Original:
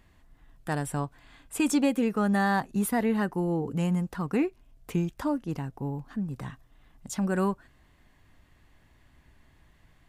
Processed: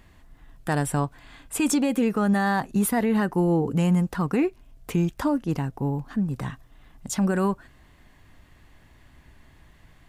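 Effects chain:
brickwall limiter −21 dBFS, peak gain reduction 7.5 dB
level +6.5 dB

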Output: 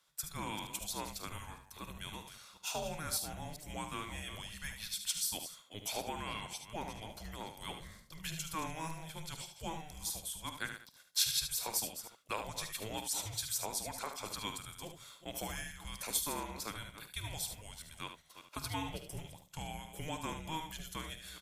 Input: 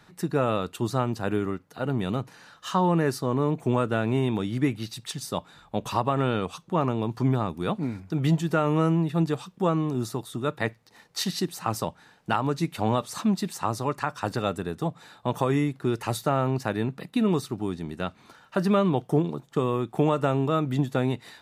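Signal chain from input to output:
delay that plays each chunk backwards 198 ms, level −11 dB
first-order pre-emphasis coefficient 0.97
noise gate −60 dBFS, range −9 dB
ambience of single reflections 50 ms −15 dB, 74 ms −8.5 dB
frequency shifter −320 Hz
level +2.5 dB

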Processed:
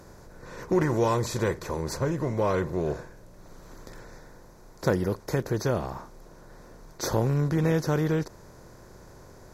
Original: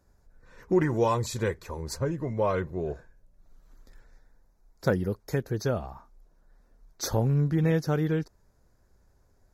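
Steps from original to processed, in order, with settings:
compressor on every frequency bin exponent 0.6
level −2 dB

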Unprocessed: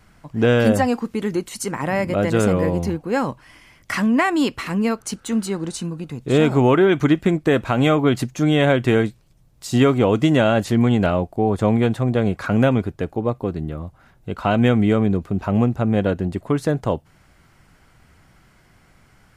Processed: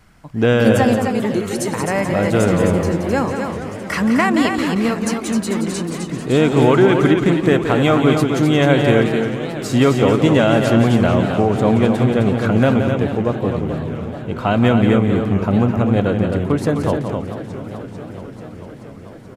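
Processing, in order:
loudspeakers that aren't time-aligned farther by 60 metres −8 dB, 89 metres −6 dB
feedback echo with a swinging delay time 437 ms, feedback 75%, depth 198 cents, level −13 dB
level +1.5 dB

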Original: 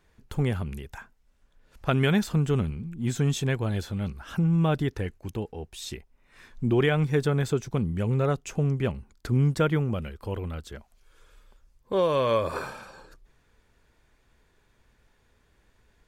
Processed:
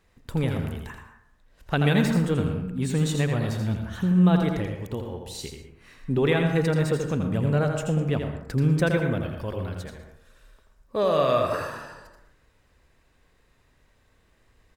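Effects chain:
on a send: single-tap delay 90 ms −6 dB
on the sum: dense smooth reverb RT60 0.77 s, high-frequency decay 0.35×, pre-delay 110 ms, DRR 7 dB
wrong playback speed 44.1 kHz file played as 48 kHz

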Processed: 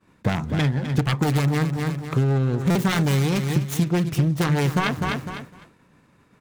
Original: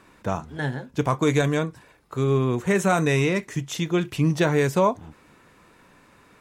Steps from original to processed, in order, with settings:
phase distortion by the signal itself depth 0.82 ms
repeating echo 252 ms, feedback 32%, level −12.5 dB
downward expander −44 dBFS
parametric band 140 Hz +10 dB 1.9 octaves
downward compressor 10 to 1, threshold −24 dBFS, peak gain reduction 15.5 dB
buffer that repeats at 0:02.70, samples 256, times 8
level +6.5 dB

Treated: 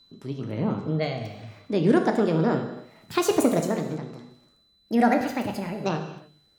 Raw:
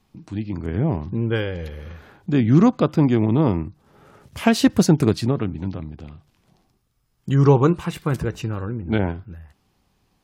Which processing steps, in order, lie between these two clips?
gliding playback speed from 127% → 184%
steady tone 4,000 Hz −50 dBFS
reverb whose tail is shaped and stops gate 330 ms falling, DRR 4 dB
level −6 dB

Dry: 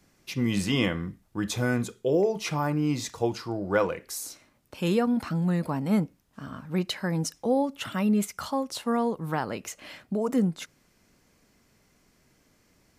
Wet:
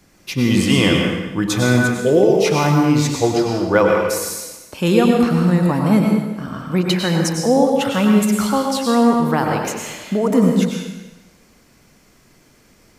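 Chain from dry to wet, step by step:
dense smooth reverb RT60 1.1 s, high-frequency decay 0.95×, pre-delay 85 ms, DRR 0.5 dB
level +9 dB

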